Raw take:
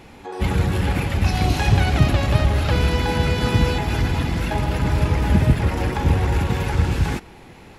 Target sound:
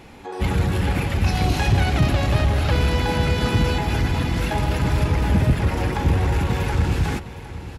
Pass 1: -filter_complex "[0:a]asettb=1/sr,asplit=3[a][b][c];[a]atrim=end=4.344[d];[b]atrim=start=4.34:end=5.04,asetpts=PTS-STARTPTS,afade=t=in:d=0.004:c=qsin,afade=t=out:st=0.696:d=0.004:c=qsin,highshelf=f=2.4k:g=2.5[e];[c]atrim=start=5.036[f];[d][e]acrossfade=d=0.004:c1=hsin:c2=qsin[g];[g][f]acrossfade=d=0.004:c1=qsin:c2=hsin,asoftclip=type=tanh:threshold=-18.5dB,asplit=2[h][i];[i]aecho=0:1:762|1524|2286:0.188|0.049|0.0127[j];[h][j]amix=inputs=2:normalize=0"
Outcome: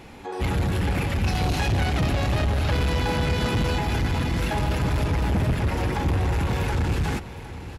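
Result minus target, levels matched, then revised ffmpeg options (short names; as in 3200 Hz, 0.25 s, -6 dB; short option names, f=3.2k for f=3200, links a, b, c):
soft clip: distortion +10 dB
-filter_complex "[0:a]asettb=1/sr,asplit=3[a][b][c];[a]atrim=end=4.344[d];[b]atrim=start=4.34:end=5.04,asetpts=PTS-STARTPTS,afade=t=in:d=0.004:c=qsin,afade=t=out:st=0.696:d=0.004:c=qsin,highshelf=f=2.4k:g=2.5[e];[c]atrim=start=5.036[f];[d][e]acrossfade=d=0.004:c1=hsin:c2=qsin[g];[g][f]acrossfade=d=0.004:c1=qsin:c2=hsin,asoftclip=type=tanh:threshold=-8.5dB,asplit=2[h][i];[i]aecho=0:1:762|1524|2286:0.188|0.049|0.0127[j];[h][j]amix=inputs=2:normalize=0"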